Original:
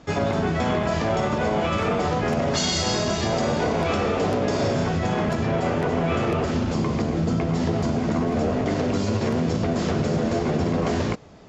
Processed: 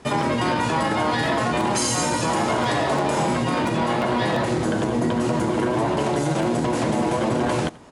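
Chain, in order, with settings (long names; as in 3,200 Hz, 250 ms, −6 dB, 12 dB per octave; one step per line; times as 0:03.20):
change of speed 1.45×
single-tap delay 85 ms −22.5 dB
level +1 dB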